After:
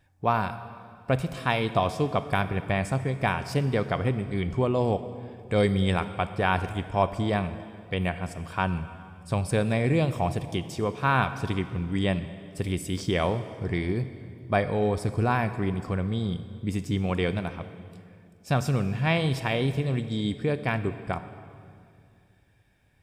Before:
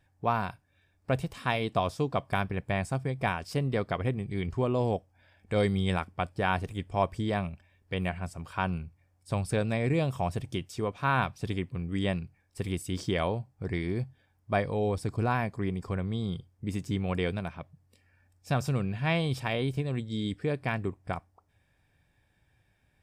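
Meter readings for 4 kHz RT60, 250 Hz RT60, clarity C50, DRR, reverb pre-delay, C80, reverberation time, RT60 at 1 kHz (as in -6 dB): 2.0 s, 2.8 s, 12.0 dB, 11.5 dB, 29 ms, 13.0 dB, 2.4 s, 2.2 s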